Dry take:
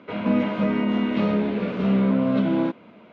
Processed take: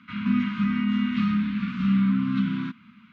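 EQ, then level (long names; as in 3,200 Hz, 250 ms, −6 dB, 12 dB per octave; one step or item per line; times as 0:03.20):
elliptic band-stop filter 240–1,200 Hz, stop band 40 dB
0.0 dB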